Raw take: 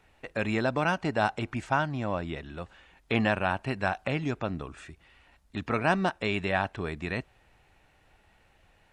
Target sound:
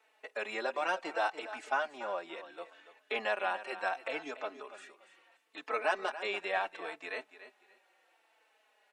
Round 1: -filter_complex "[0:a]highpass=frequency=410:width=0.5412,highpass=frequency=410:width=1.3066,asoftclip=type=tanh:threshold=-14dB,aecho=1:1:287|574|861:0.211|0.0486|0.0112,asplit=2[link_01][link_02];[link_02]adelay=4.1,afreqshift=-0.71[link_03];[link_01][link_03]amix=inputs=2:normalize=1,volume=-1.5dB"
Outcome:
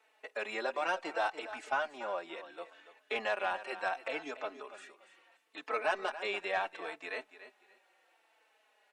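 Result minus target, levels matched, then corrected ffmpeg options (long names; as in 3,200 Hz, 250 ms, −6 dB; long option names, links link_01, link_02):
soft clipping: distortion +13 dB
-filter_complex "[0:a]highpass=frequency=410:width=0.5412,highpass=frequency=410:width=1.3066,asoftclip=type=tanh:threshold=-6.5dB,aecho=1:1:287|574|861:0.211|0.0486|0.0112,asplit=2[link_01][link_02];[link_02]adelay=4.1,afreqshift=-0.71[link_03];[link_01][link_03]amix=inputs=2:normalize=1,volume=-1.5dB"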